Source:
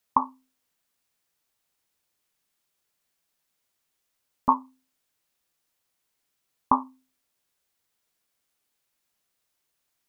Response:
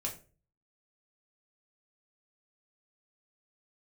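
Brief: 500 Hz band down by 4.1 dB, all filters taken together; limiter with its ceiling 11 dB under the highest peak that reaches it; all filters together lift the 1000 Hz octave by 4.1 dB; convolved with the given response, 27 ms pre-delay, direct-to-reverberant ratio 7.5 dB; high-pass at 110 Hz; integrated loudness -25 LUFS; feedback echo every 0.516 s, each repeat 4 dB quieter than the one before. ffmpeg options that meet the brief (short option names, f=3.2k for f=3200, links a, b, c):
-filter_complex "[0:a]highpass=110,equalizer=f=500:t=o:g=-7.5,equalizer=f=1k:t=o:g=6,alimiter=limit=-11.5dB:level=0:latency=1,aecho=1:1:516|1032|1548|2064|2580|3096|3612|4128|4644:0.631|0.398|0.25|0.158|0.0994|0.0626|0.0394|0.0249|0.0157,asplit=2[a][b];[1:a]atrim=start_sample=2205,adelay=27[c];[b][c]afir=irnorm=-1:irlink=0,volume=-8.5dB[d];[a][d]amix=inputs=2:normalize=0,volume=9dB"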